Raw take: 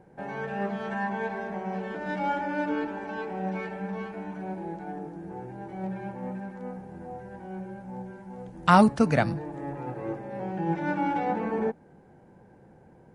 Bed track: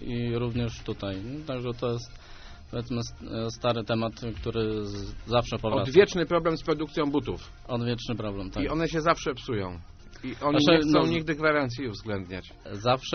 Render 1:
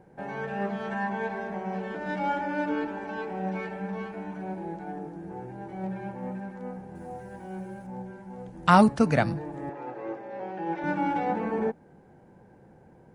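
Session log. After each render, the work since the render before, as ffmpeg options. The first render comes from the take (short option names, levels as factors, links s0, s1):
-filter_complex "[0:a]asettb=1/sr,asplit=3[s0][s1][s2];[s0]atrim=end=6.954[s3];[s1]atrim=start=6.95:end=7.87,asetpts=PTS-STARTPTS,afade=t=in:d=0.004:c=qsin,afade=t=out:st=0.916:d=0.004:c=qsin,aemphasis=mode=production:type=50kf[s4];[s2]atrim=start=7.866[s5];[s3][s4]acrossfade=d=0.004:c1=hsin:c2=qsin[s6];[s6][s5]acrossfade=d=0.004:c1=qsin:c2=hsin,asettb=1/sr,asplit=3[s7][s8][s9];[s7]atrim=end=9.694[s10];[s8]atrim=start=9.69:end=10.84,asetpts=PTS-STARTPTS,afade=t=in:d=0.004:c=qsin,afade=t=out:st=1.146:d=0.004:c=qsin,acrossover=split=280 6600:gain=0.141 1 0.0708[s11][s12][s13];[s11][s12][s13]amix=inputs=3:normalize=0[s14];[s9]atrim=start=10.836[s15];[s10][s14]acrossfade=d=0.004:c1=hsin:c2=qsin[s16];[s16][s15]acrossfade=d=0.004:c1=qsin:c2=hsin"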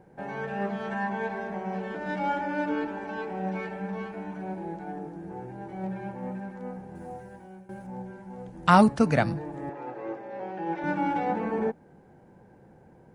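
-filter_complex "[0:a]asplit=2[s0][s1];[s0]atrim=end=7.69,asetpts=PTS-STARTPTS,afade=t=out:st=7.08:d=0.61:silence=0.16788[s2];[s1]atrim=start=7.69,asetpts=PTS-STARTPTS,afade=t=in:d=0.004:c=hsin:silence=0.16788[s3];[s2][s3]concat=n=2:v=0:a=1"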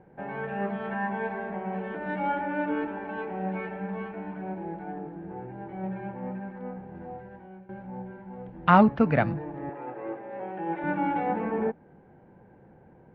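-af "lowpass=f=2900:w=0.5412,lowpass=f=2900:w=1.3066"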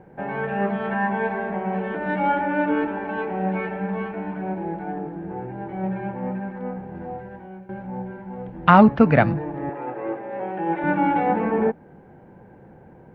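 -af "volume=2.24,alimiter=limit=0.891:level=0:latency=1"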